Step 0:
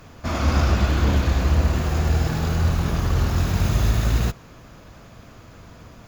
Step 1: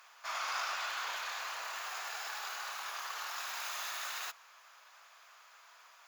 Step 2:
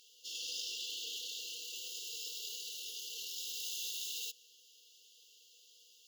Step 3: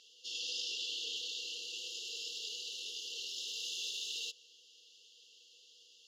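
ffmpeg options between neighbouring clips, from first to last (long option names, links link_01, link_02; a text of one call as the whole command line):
ffmpeg -i in.wav -af "highpass=frequency=910:width=0.5412,highpass=frequency=910:width=1.3066,volume=-6.5dB" out.wav
ffmpeg -i in.wav -af "afftfilt=real='re*(1-between(b*sr/4096,510,2700))':imag='im*(1-between(b*sr/4096,510,2700))':win_size=4096:overlap=0.75,volume=2.5dB" out.wav
ffmpeg -i in.wav -af "highpass=160,lowpass=5200,volume=4dB" out.wav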